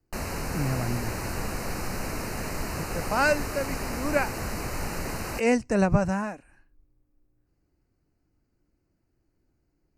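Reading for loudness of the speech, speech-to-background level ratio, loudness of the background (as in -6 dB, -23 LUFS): -27.5 LUFS, 5.5 dB, -33.0 LUFS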